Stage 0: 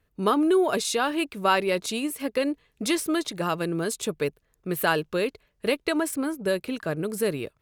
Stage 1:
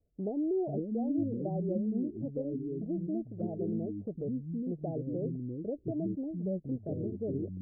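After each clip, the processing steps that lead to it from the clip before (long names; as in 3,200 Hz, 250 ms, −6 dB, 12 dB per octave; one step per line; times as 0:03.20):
Butterworth low-pass 740 Hz 96 dB per octave
delay with pitch and tempo change per echo 424 ms, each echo −5 semitones, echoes 2
dynamic equaliser 550 Hz, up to −6 dB, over −36 dBFS, Q 0.7
level −6 dB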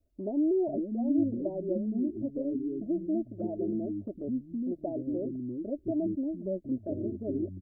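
comb filter 3.2 ms, depth 88%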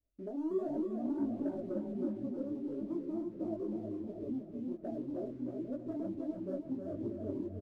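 leveller curve on the samples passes 1
on a send: repeating echo 315 ms, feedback 46%, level −4.5 dB
on the sum: micro pitch shift up and down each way 49 cents
level −7 dB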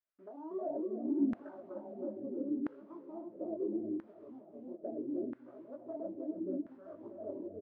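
auto-filter band-pass saw down 0.75 Hz 260–1,600 Hz
level +5 dB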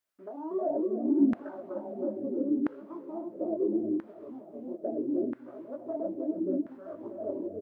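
low-shelf EQ 67 Hz −9.5 dB
level +8 dB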